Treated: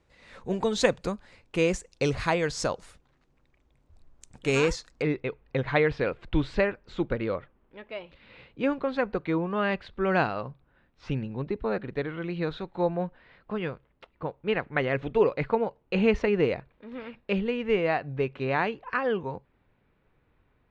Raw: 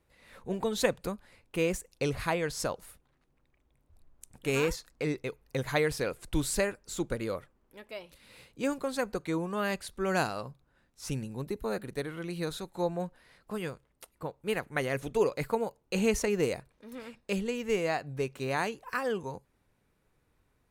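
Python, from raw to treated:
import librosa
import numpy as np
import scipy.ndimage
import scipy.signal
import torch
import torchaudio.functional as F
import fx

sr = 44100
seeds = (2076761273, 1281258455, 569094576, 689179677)

y = fx.lowpass(x, sr, hz=fx.steps((0.0, 7400.0), (5.02, 3300.0)), slope=24)
y = y * 10.0 ** (4.5 / 20.0)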